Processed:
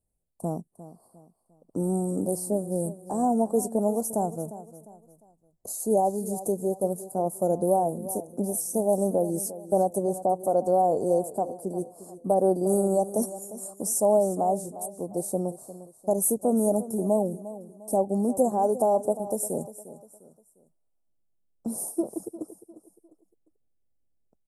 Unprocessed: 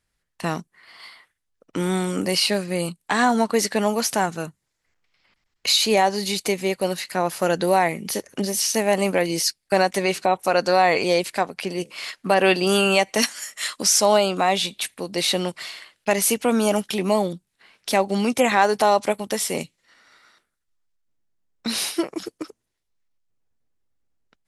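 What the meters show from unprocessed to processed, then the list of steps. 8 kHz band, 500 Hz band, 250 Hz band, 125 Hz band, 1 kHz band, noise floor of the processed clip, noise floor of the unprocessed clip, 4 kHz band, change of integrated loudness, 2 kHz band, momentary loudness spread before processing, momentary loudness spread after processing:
-7.0 dB, -3.0 dB, -3.0 dB, -3.0 dB, -6.5 dB, -71 dBFS, -77 dBFS, under -30 dB, -5.0 dB, under -40 dB, 12 LU, 14 LU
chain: elliptic band-stop 710–8600 Hz, stop band 80 dB; feedback delay 352 ms, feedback 37%, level -15 dB; trim -2.5 dB

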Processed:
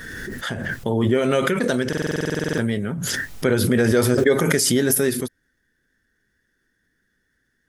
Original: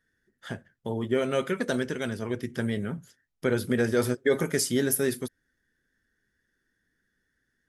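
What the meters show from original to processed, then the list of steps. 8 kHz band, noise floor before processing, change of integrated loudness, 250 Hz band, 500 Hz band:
+8.5 dB, -77 dBFS, +7.5 dB, +8.0 dB, +7.0 dB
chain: buffer glitch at 1.88 s, samples 2048, times 14; swell ahead of each attack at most 22 dB/s; trim +5.5 dB

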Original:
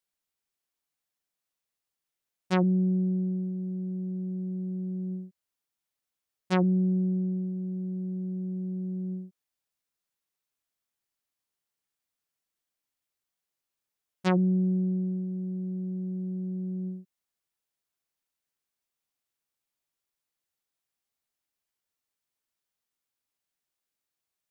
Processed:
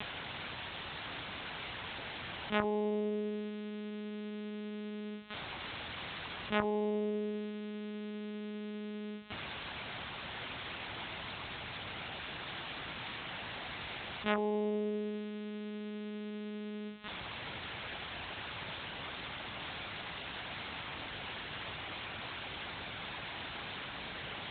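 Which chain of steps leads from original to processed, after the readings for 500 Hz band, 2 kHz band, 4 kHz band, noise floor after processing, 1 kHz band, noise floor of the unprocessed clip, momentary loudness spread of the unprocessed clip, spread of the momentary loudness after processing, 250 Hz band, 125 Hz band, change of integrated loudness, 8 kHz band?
+1.5 dB, +8.0 dB, +12.5 dB, -44 dBFS, +2.0 dB, under -85 dBFS, 10 LU, 8 LU, -10.5 dB, -16.0 dB, -10.0 dB, no reading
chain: zero-crossing glitches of -24.5 dBFS; Chebyshev shaper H 3 -6 dB, 6 -12 dB, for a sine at -14 dBFS; monotone LPC vocoder at 8 kHz 210 Hz; high-pass 79 Hz 12 dB/octave; loudspeaker Doppler distortion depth 0.11 ms; trim -2 dB

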